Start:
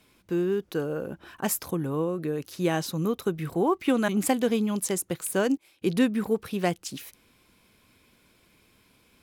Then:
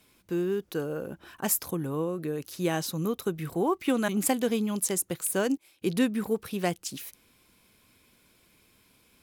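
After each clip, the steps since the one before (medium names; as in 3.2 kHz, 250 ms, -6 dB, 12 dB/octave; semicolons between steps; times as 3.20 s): treble shelf 5.9 kHz +6.5 dB; trim -2.5 dB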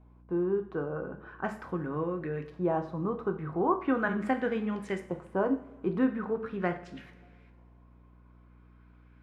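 LFO low-pass saw up 0.4 Hz 880–2000 Hz; two-slope reverb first 0.47 s, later 2.6 s, from -21 dB, DRR 5 dB; hum 60 Hz, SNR 24 dB; trim -4 dB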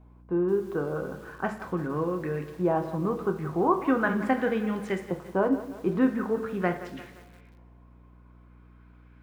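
bit-crushed delay 173 ms, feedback 55%, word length 8-bit, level -14 dB; trim +3.5 dB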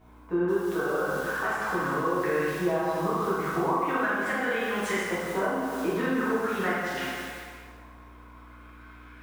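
tilt shelf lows -8.5 dB, about 640 Hz; compression 6:1, threshold -33 dBFS, peak gain reduction 16 dB; plate-style reverb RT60 1.6 s, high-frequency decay 0.75×, DRR -8.5 dB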